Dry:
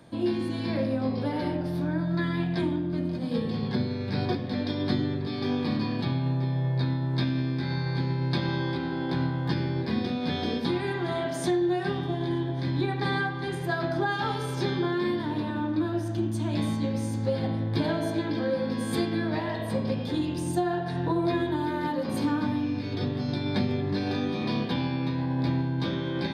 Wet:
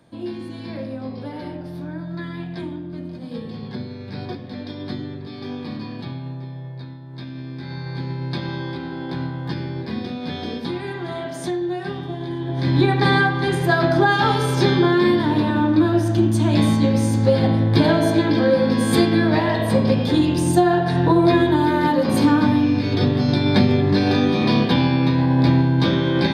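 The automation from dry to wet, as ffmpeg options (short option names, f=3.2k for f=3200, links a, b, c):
-af "volume=19dB,afade=t=out:st=6.04:d=1.01:silence=0.398107,afade=t=in:st=7.05:d=1.06:silence=0.266073,afade=t=in:st=12.39:d=0.4:silence=0.298538"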